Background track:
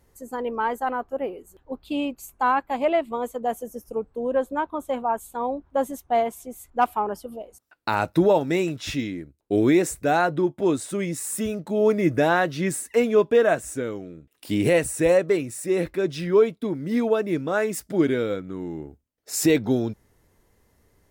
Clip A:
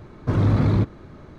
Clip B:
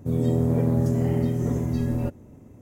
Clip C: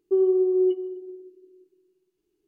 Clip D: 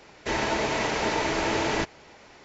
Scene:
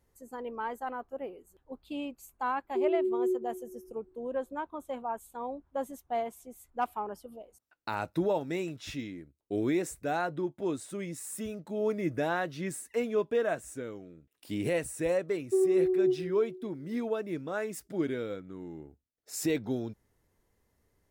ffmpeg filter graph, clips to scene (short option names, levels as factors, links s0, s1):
-filter_complex "[3:a]asplit=2[s0][s1];[0:a]volume=0.299[s2];[s0]asuperpass=centerf=280:order=4:qfactor=1.2,atrim=end=2.47,asetpts=PTS-STARTPTS,volume=0.422,afade=t=in:d=0.004:c=hsin,afade=t=out:st=2.466:d=0.004:c=hsin,adelay=2640[s3];[s1]atrim=end=2.47,asetpts=PTS-STARTPTS,volume=0.562,afade=t=in:d=0.004:c=hsin,afade=t=out:st=2.466:d=0.004:c=hsin,adelay=15410[s4];[s2][s3][s4]amix=inputs=3:normalize=0"